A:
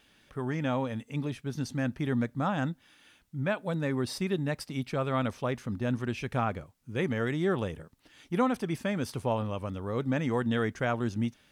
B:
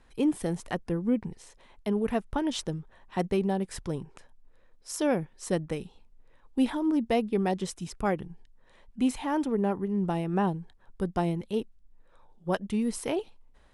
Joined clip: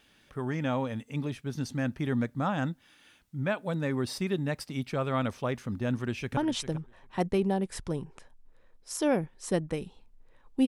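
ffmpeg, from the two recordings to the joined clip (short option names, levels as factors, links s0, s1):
-filter_complex "[0:a]apad=whole_dur=10.67,atrim=end=10.67,atrim=end=6.372[s0];[1:a]atrim=start=2.358:end=6.66[s1];[s0][s1]acrossfade=d=0.004:c1=hsin:c2=hsin,asplit=2[s2][s3];[s3]afade=t=in:st=5.92:d=0.01,afade=t=out:st=6.37:d=0.01,aecho=0:1:400|800:0.251189|0.0251189[s4];[s2][s4]amix=inputs=2:normalize=0"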